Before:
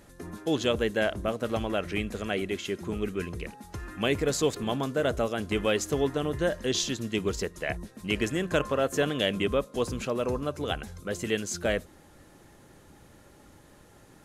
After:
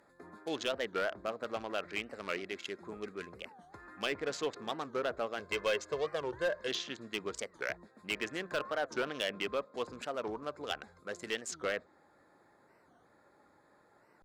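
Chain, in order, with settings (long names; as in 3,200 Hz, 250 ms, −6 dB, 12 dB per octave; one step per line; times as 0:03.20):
adaptive Wiener filter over 15 samples
high-pass filter 1,200 Hz 6 dB per octave
treble cut that deepens with the level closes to 2,500 Hz, closed at −28 dBFS
0:05.39–0:06.68: comb filter 1.9 ms, depth 68%
hard clipping −25 dBFS, distortion −14 dB
wow of a warped record 45 rpm, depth 250 cents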